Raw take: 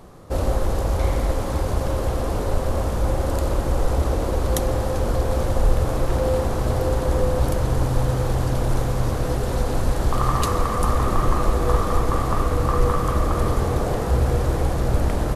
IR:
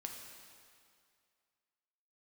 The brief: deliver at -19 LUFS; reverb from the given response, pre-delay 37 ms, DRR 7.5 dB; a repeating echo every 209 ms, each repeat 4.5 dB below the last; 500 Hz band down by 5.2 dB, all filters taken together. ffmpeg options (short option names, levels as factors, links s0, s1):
-filter_complex "[0:a]equalizer=f=500:t=o:g=-6,aecho=1:1:209|418|627|836|1045|1254|1463|1672|1881:0.596|0.357|0.214|0.129|0.0772|0.0463|0.0278|0.0167|0.01,asplit=2[s0][s1];[1:a]atrim=start_sample=2205,adelay=37[s2];[s1][s2]afir=irnorm=-1:irlink=0,volume=0.562[s3];[s0][s3]amix=inputs=2:normalize=0,volume=1.41"